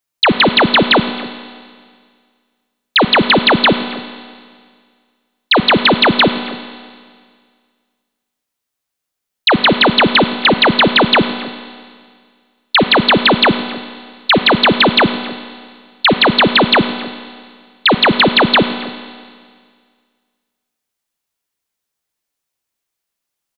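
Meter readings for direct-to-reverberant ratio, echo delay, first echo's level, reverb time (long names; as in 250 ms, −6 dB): 9.5 dB, 267 ms, −21.0 dB, 1.9 s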